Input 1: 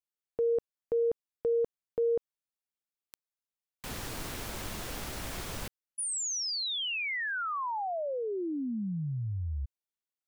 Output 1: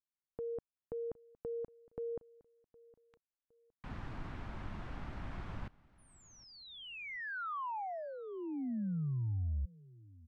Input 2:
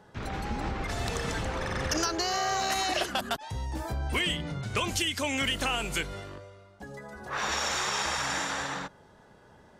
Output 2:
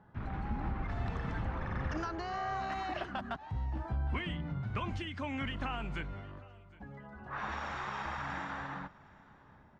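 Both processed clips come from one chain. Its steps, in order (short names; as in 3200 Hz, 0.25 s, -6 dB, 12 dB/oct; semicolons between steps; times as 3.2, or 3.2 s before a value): Bessel low-pass 1100 Hz, order 2; bell 470 Hz -11 dB 1.1 oct; feedback echo 0.763 s, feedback 34%, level -22.5 dB; gain -1 dB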